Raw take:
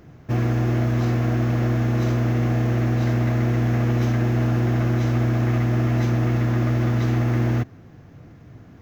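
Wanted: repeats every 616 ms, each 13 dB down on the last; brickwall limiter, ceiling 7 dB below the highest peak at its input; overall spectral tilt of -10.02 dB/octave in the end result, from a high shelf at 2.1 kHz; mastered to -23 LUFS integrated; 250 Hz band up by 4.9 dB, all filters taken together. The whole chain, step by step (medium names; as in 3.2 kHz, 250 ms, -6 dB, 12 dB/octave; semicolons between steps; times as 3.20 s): peaking EQ 250 Hz +6 dB; treble shelf 2.1 kHz -7 dB; peak limiter -15 dBFS; feedback delay 616 ms, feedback 22%, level -13 dB; trim -1.5 dB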